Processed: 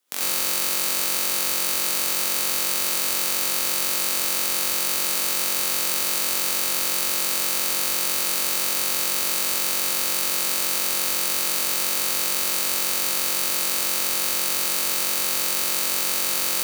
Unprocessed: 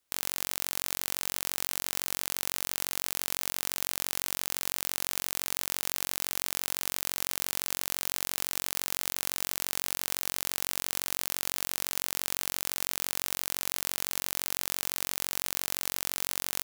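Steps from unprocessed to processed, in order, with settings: HPF 170 Hz 24 dB/oct; non-linear reverb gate 0.12 s rising, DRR -6.5 dB; gain +2.5 dB

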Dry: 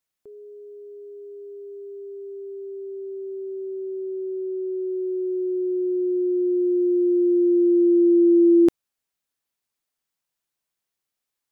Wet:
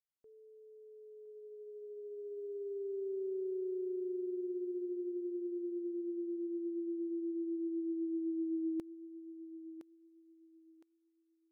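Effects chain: Doppler pass-by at 3.11, 18 m/s, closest 16 m; thinning echo 1.013 s, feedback 40%, high-pass 530 Hz, level -7 dB; gain -6 dB

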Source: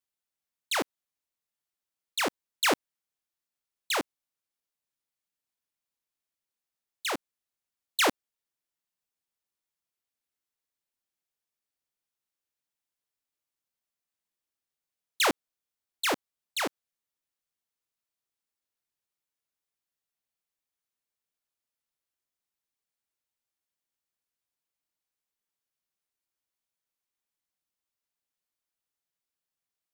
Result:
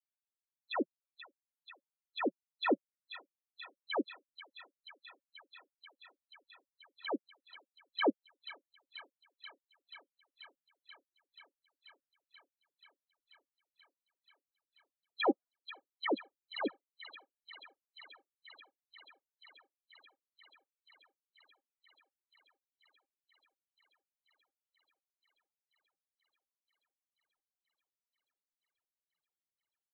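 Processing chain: 15.28–16.07 dynamic EQ 920 Hz, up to +6 dB, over -41 dBFS, Q 0.8; loudest bins only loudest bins 8; thin delay 0.484 s, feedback 82%, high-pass 2000 Hz, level -9 dB; gain +1 dB

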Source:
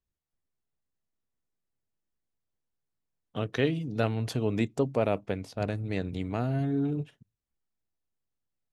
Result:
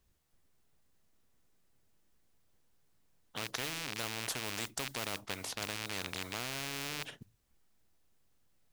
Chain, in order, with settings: rattling part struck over -34 dBFS, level -27 dBFS; modulation noise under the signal 35 dB; spectral compressor 4:1; gain -3.5 dB

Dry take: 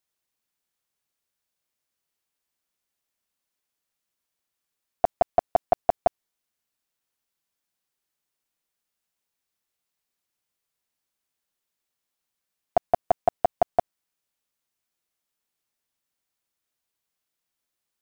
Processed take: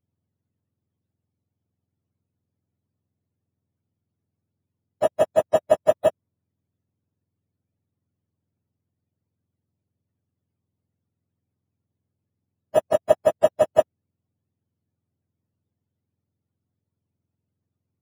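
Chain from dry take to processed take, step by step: spectrum mirrored in octaves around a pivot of 660 Hz; harmonic-percussive split percussive +8 dB

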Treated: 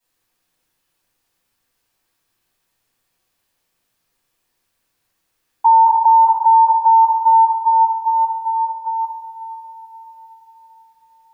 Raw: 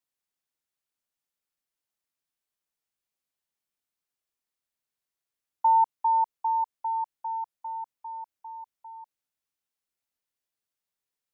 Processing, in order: 8.46–8.98 tilt shelf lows +3.5 dB; diffused feedback echo 0.461 s, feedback 50%, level -13 dB; reverb RT60 0.85 s, pre-delay 3 ms, DRR -13.5 dB; maximiser +7.5 dB; gain -5 dB

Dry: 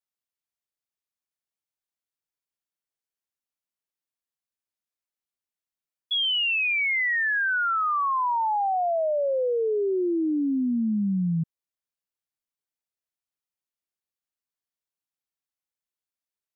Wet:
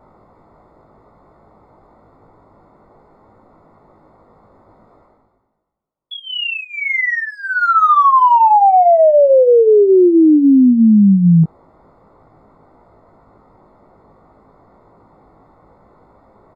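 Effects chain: Wiener smoothing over 15 samples; reverse; upward compressor, threshold -39 dBFS; reverse; polynomial smoothing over 65 samples; doubler 19 ms -4 dB; maximiser +23 dB; gain -4 dB

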